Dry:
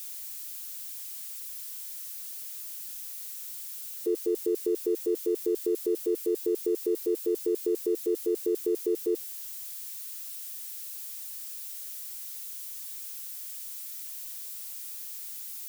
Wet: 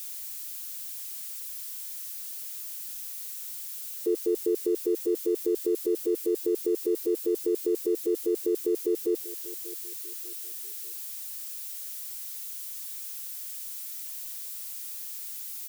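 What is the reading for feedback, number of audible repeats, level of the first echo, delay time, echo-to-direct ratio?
38%, 3, −17.0 dB, 592 ms, −16.5 dB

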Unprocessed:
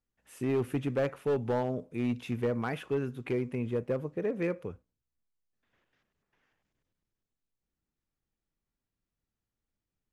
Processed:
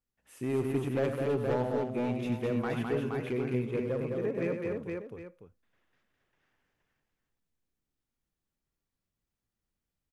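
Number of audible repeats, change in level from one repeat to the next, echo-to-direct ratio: 5, repeats not evenly spaced, 0.0 dB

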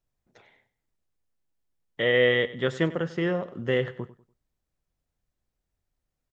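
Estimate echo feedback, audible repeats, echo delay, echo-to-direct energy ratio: 32%, 2, 97 ms, −16.5 dB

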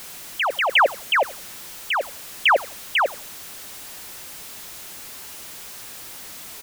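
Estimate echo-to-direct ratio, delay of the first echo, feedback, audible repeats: −20.0 dB, 85 ms, 23%, 2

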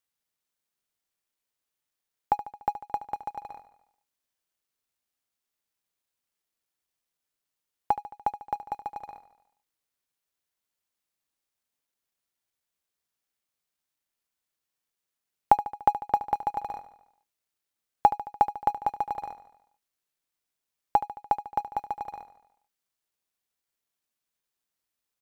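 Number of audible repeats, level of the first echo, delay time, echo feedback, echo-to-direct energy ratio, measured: 5, −13.5 dB, 73 ms, 59%, −11.5 dB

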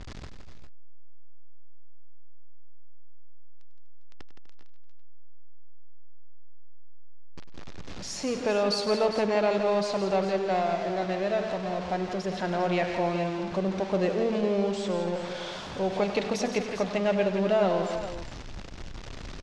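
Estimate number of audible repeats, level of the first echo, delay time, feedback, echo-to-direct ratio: 4, −12.5 dB, 99 ms, repeats not evenly spaced, −5.0 dB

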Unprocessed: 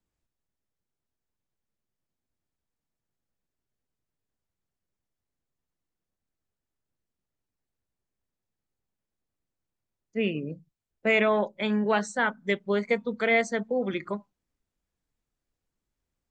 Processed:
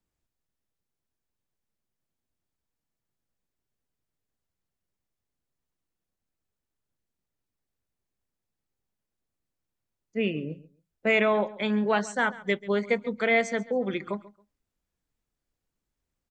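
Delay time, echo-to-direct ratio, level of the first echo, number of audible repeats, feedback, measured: 137 ms, −19.0 dB, −19.0 dB, 2, 21%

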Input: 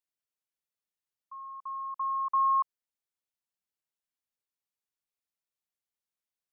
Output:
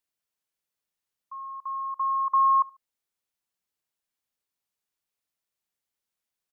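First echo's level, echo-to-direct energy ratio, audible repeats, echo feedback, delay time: −24.0 dB, −23.5 dB, 2, 29%, 72 ms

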